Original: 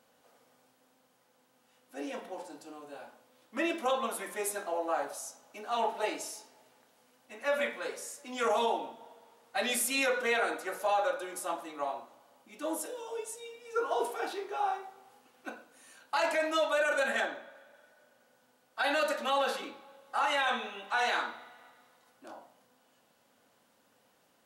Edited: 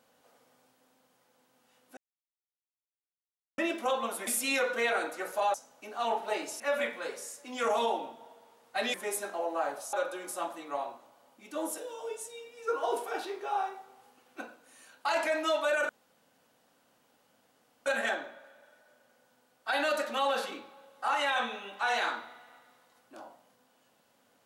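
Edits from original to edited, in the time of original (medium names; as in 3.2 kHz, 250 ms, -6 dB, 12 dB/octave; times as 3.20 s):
1.97–3.58 s: mute
4.27–5.26 s: swap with 9.74–11.01 s
6.32–7.40 s: delete
16.97 s: insert room tone 1.97 s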